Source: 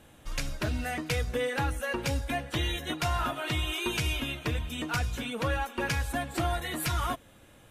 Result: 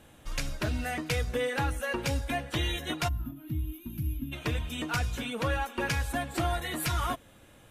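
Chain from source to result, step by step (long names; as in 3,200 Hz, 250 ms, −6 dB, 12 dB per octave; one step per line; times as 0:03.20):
gain on a spectral selection 0:03.08–0:04.33, 340–11,000 Hz −27 dB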